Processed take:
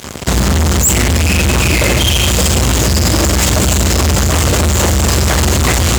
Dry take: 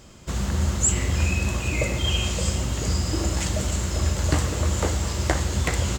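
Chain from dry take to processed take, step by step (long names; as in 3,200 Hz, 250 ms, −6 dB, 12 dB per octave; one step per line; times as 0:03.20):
fuzz pedal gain 39 dB, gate −45 dBFS
high-pass filter 50 Hz 24 dB per octave
boost into a limiter +6.5 dB
level −1 dB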